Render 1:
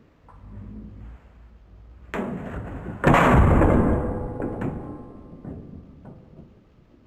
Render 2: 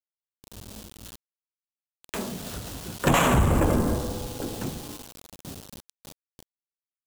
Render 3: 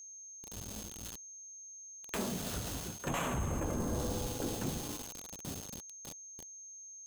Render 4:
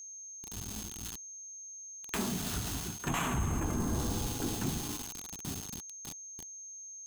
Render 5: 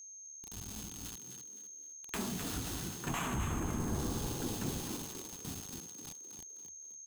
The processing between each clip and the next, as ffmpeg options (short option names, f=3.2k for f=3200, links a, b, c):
-af "aeval=exprs='val(0)*gte(abs(val(0)),0.0141)':c=same,aexciter=amount=5.3:drive=3.6:freq=2.9k,volume=-4.5dB"
-af "areverse,acompressor=threshold=-29dB:ratio=12,areverse,aeval=exprs='val(0)+0.00562*sin(2*PI*6400*n/s)':c=same,volume=-2.5dB"
-af "equalizer=f=540:t=o:w=0.38:g=-14.5,volume=3.5dB"
-filter_complex "[0:a]asplit=5[a][b][c][d][e];[b]adelay=257,afreqshift=74,volume=-7.5dB[f];[c]adelay=514,afreqshift=148,volume=-16.9dB[g];[d]adelay=771,afreqshift=222,volume=-26.2dB[h];[e]adelay=1028,afreqshift=296,volume=-35.6dB[i];[a][f][g][h][i]amix=inputs=5:normalize=0,volume=-4dB"